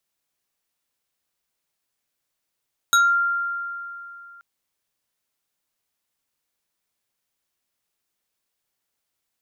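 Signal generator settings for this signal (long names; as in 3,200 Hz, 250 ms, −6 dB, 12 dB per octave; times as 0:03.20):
two-operator FM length 1.48 s, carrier 1,390 Hz, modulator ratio 3.74, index 1.3, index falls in 0.27 s exponential, decay 2.81 s, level −12 dB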